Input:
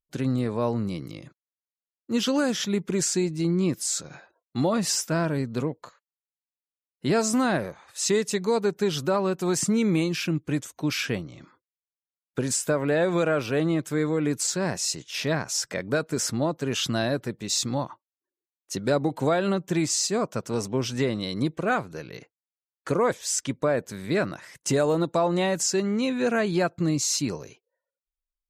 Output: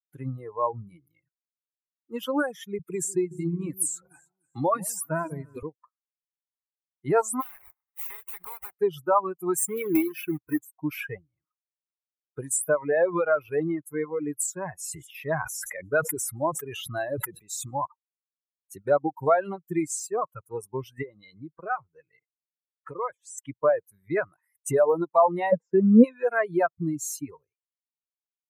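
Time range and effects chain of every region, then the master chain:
0:02.79–0:05.63: delay that swaps between a low-pass and a high-pass 148 ms, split 860 Hz, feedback 51%, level −6 dB + multiband upward and downward compressor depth 40%
0:07.40–0:08.78: compressing power law on the bin magnitudes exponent 0.31 + sample-rate reduction 12,000 Hz + downward compressor 16 to 1, threshold −27 dBFS
0:09.58–0:10.77: comb filter 2.7 ms, depth 44% + log-companded quantiser 4 bits
0:14.76–0:17.86: delay with a high-pass on its return 169 ms, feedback 59%, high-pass 4,900 Hz, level −22 dB + level that may fall only so fast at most 32 dB per second
0:21.02–0:23.38: downward compressor 4 to 1, threshold −25 dBFS + low-pass filter 7,200 Hz
0:25.52–0:26.04: low-pass filter 1,800 Hz + hollow resonant body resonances 230/480 Hz, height 15 dB, ringing for 55 ms
whole clip: spectral dynamics exaggerated over time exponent 2; reverb reduction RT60 1.5 s; drawn EQ curve 110 Hz 0 dB, 1,100 Hz +13 dB, 2,900 Hz −1 dB, 4,700 Hz −16 dB, 9,400 Hz +14 dB; level −2.5 dB

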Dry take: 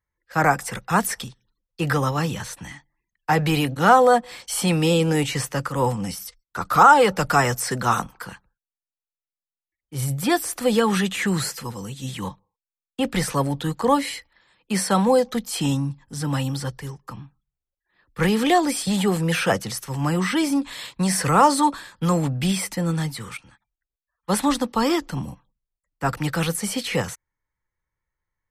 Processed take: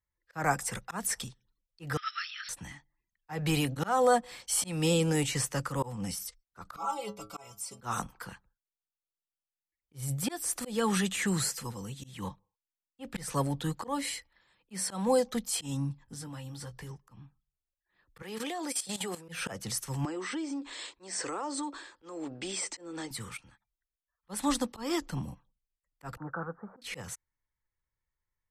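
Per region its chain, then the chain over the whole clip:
0:01.97–0:02.49: leveller curve on the samples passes 1 + linear-phase brick-wall band-pass 1,200–5,700 Hz
0:06.76–0:07.81: Butterworth band-reject 1,700 Hz, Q 2.1 + low-shelf EQ 480 Hz −4 dB + stiff-string resonator 100 Hz, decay 0.32 s, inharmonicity 0.008
0:16.04–0:16.91: downward compressor 10 to 1, threshold −31 dBFS + double-tracking delay 17 ms −8.5 dB
0:18.22–0:19.29: high-pass filter 330 Hz + output level in coarse steps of 14 dB
0:20.05–0:23.11: Butterworth low-pass 8,600 Hz 96 dB per octave + low shelf with overshoot 230 Hz −12 dB, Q 3 + downward compressor 5 to 1, threshold −26 dBFS
0:26.17–0:26.82: Butterworth low-pass 1,500 Hz 72 dB per octave + spectral tilt +4 dB per octave
whole clip: low-shelf EQ 90 Hz +4.5 dB; volume swells 211 ms; dynamic equaliser 8,000 Hz, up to +7 dB, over −44 dBFS, Q 0.95; level −8 dB

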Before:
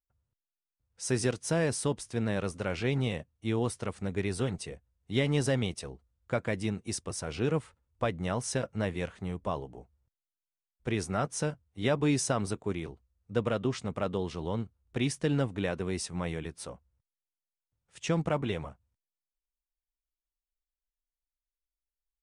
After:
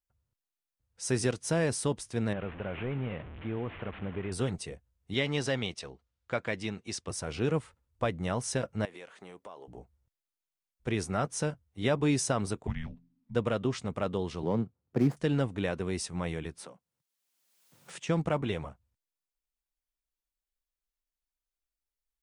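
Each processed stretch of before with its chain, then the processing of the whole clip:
0:02.33–0:04.32: linear delta modulator 16 kbit/s, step −38.5 dBFS + downward compressor 2 to 1, threshold −33 dBFS
0:05.14–0:07.08: low-pass filter 4,800 Hz + spectral tilt +2 dB per octave
0:08.85–0:09.68: high-pass filter 390 Hz + downward compressor 5 to 1, threshold −43 dBFS
0:12.67–0:13.35: low-pass filter 3,800 Hz + hum removal 148 Hz, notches 5 + frequency shifter −320 Hz
0:14.43–0:15.17: running median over 15 samples + high-pass filter 120 Hz 24 dB per octave + tilt shelving filter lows +5.5 dB, about 1,400 Hz
0:16.59–0:18.09: Chebyshev high-pass filter 160 Hz, order 3 + multiband upward and downward compressor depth 100%
whole clip: no processing

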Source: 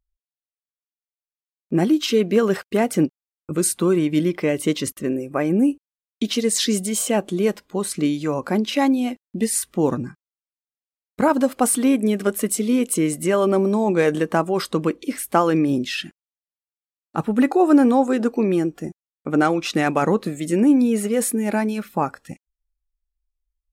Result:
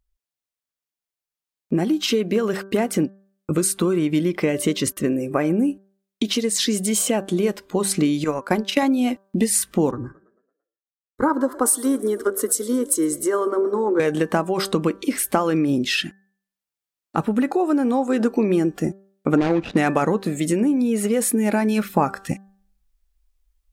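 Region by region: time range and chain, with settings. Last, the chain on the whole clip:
0:08.24–0:08.83: low-shelf EQ 460 Hz −6 dB + transient designer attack +7 dB, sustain −8 dB + expander for the loud parts, over −33 dBFS
0:09.91–0:14.00: phaser with its sweep stopped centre 680 Hz, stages 6 + echo with shifted repeats 112 ms, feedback 65%, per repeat +35 Hz, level −21 dB + multiband upward and downward expander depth 70%
0:19.37–0:19.77: running median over 41 samples + low-pass filter 5,300 Hz
whole clip: downward compressor, threshold −23 dBFS; hum removal 195 Hz, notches 9; speech leveller 2 s; level +6.5 dB

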